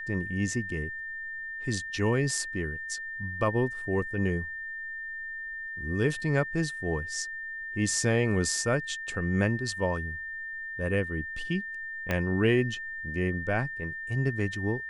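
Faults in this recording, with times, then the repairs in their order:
whistle 1,800 Hz −35 dBFS
0:12.11: click −14 dBFS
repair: click removal
notch filter 1,800 Hz, Q 30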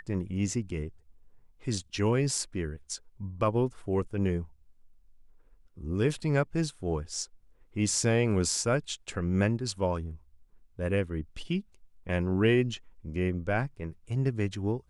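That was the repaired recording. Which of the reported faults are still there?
0:12.11: click

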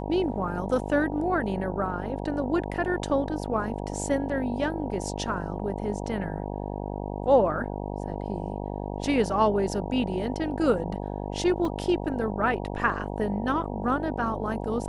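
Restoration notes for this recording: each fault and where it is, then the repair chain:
mains buzz 50 Hz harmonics 19 −33 dBFS
0:11.65: drop-out 2.4 ms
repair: hum removal 50 Hz, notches 19
repair the gap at 0:11.65, 2.4 ms

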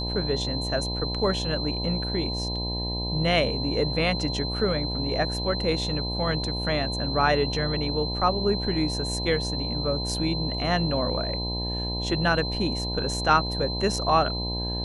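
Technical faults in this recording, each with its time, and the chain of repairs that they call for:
mains buzz 60 Hz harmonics 17 −31 dBFS
whistle 4,100 Hz −31 dBFS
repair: hum removal 60 Hz, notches 17
notch filter 4,100 Hz, Q 30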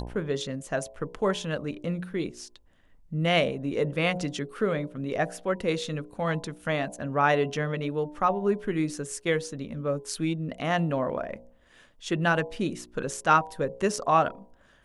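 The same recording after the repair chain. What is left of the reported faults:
none of them is left

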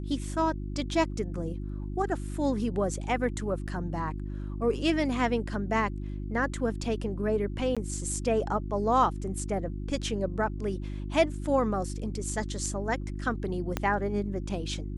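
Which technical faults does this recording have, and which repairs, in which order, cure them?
mains hum 50 Hz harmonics 7 −35 dBFS
0:03.67–0:03.68: drop-out 7.1 ms
0:07.75–0:07.77: drop-out 16 ms
0:13.77: click −13 dBFS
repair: click removal
hum removal 50 Hz, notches 7
repair the gap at 0:03.67, 7.1 ms
repair the gap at 0:07.75, 16 ms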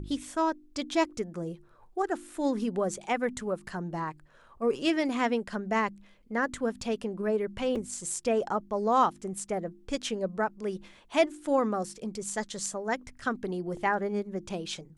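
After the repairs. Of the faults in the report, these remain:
0:13.77: click

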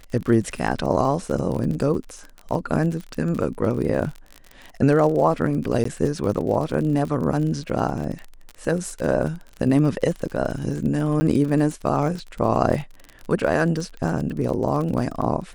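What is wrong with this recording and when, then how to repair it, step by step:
surface crackle 39 per second −28 dBFS
0:05.84–0:05.85: drop-out 14 ms
0:11.20–0:11.21: drop-out 10 ms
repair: click removal
repair the gap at 0:05.84, 14 ms
repair the gap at 0:11.20, 10 ms

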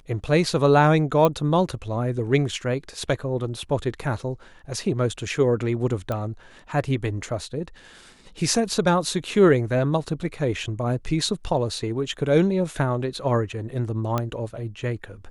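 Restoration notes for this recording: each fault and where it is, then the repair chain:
0:01.25: click −8 dBFS
0:06.12: click −15 dBFS
0:14.18: click −11 dBFS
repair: click removal

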